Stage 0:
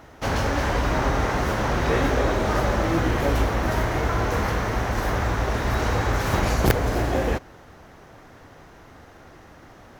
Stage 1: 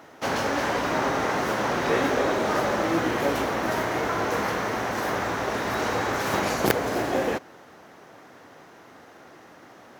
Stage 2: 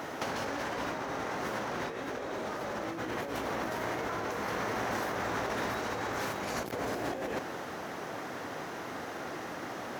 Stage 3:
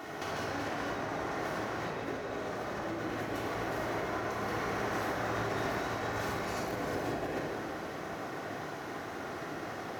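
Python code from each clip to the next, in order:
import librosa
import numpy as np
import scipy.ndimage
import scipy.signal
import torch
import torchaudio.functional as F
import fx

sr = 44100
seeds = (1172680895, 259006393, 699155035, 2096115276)

y1 = scipy.signal.sosfilt(scipy.signal.butter(2, 210.0, 'highpass', fs=sr, output='sos'), x)
y2 = fx.over_compress(y1, sr, threshold_db=-35.0, ratio=-1.0)
y3 = fx.room_shoebox(y2, sr, seeds[0], volume_m3=2300.0, walls='mixed', distance_m=3.4)
y3 = F.gain(torch.from_numpy(y3), -6.5).numpy()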